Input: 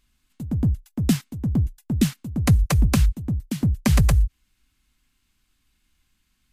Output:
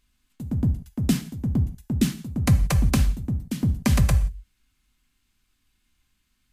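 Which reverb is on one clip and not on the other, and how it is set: non-linear reverb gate 0.2 s falling, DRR 8.5 dB; gain -2 dB

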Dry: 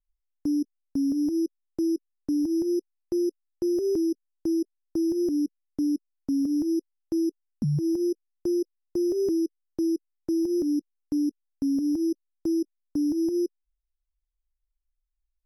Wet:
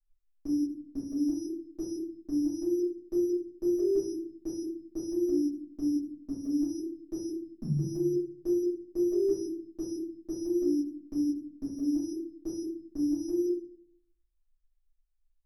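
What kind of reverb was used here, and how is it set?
shoebox room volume 58 m³, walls mixed, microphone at 2.5 m; gain -15.5 dB

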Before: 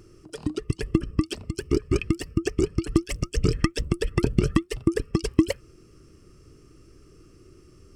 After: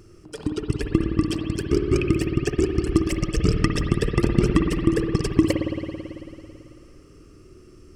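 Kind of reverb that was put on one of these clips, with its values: spring tank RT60 2.7 s, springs 55 ms, chirp 45 ms, DRR 2 dB; gain +1.5 dB

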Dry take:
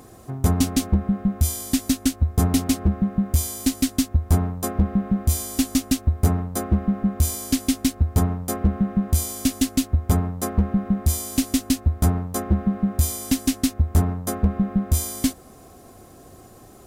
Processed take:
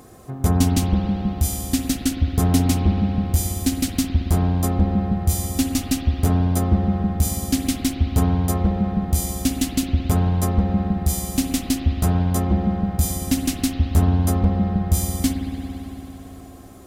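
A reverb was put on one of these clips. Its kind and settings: spring tank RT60 3.8 s, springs 56 ms, chirp 45 ms, DRR 2.5 dB

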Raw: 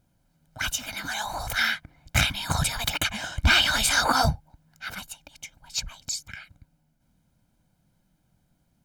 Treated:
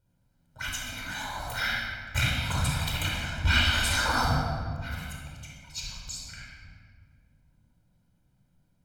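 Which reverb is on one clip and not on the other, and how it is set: shoebox room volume 3100 m³, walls mixed, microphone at 4.7 m; gain -10.5 dB

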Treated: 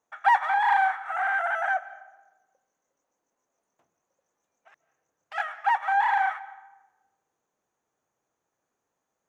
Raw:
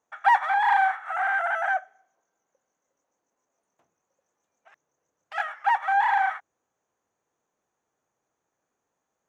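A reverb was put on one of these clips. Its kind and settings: digital reverb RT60 1.1 s, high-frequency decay 0.6×, pre-delay 0.11 s, DRR 17.5 dB; gain -1 dB

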